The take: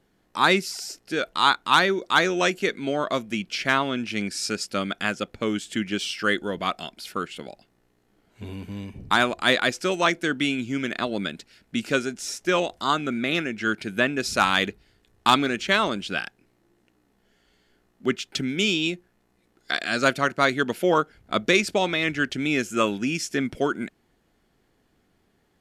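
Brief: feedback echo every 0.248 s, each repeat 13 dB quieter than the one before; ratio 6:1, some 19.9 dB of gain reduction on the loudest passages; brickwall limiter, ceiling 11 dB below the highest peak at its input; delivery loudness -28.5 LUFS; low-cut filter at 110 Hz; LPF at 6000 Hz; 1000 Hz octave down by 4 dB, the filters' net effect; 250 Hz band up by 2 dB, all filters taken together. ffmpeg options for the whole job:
-af "highpass=110,lowpass=6k,equalizer=f=250:t=o:g=3,equalizer=f=1k:t=o:g=-5.5,acompressor=threshold=-38dB:ratio=6,alimiter=level_in=5dB:limit=-24dB:level=0:latency=1,volume=-5dB,aecho=1:1:248|496|744:0.224|0.0493|0.0108,volume=13.5dB"

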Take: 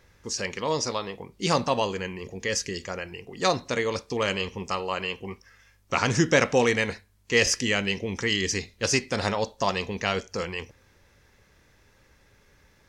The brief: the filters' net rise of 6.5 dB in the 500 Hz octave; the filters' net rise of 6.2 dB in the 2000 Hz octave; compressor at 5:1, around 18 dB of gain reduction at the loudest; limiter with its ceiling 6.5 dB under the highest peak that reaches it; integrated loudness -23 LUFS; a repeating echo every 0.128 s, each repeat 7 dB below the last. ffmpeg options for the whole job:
-af "equalizer=f=500:t=o:g=7,equalizer=f=2k:t=o:g=7,acompressor=threshold=-31dB:ratio=5,alimiter=limit=-22dB:level=0:latency=1,aecho=1:1:128|256|384|512|640:0.447|0.201|0.0905|0.0407|0.0183,volume=11.5dB"

